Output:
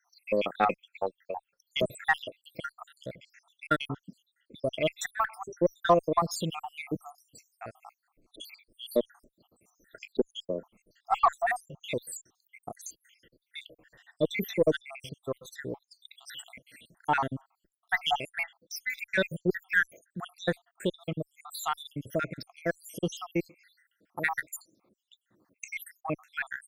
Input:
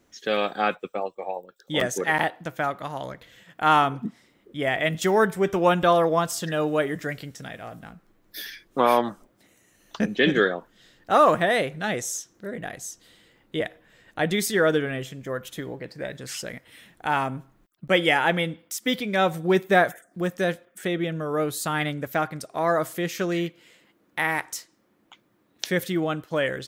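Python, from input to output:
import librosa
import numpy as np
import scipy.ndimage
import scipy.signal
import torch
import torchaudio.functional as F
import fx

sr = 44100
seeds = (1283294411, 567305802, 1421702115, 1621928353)

y = fx.spec_dropout(x, sr, seeds[0], share_pct=82)
y = fx.cheby_harmonics(y, sr, harmonics=(6,), levels_db=(-32,), full_scale_db=-8.5)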